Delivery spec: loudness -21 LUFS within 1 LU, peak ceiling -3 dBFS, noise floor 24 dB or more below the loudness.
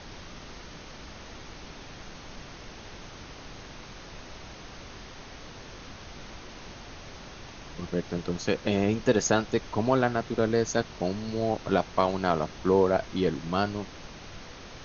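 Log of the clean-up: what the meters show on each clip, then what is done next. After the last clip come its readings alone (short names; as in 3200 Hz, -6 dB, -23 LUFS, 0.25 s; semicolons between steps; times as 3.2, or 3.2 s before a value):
noise floor -45 dBFS; noise floor target -52 dBFS; loudness -27.5 LUFS; peak -8.5 dBFS; loudness target -21.0 LUFS
-> noise print and reduce 7 dB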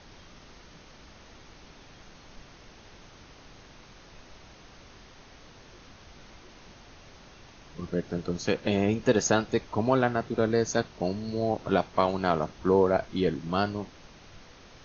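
noise floor -52 dBFS; loudness -27.5 LUFS; peak -8.5 dBFS; loudness target -21.0 LUFS
-> gain +6.5 dB; limiter -3 dBFS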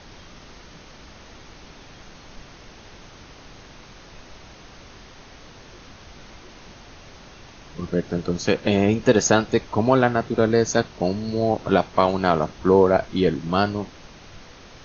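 loudness -21.0 LUFS; peak -3.0 dBFS; noise floor -46 dBFS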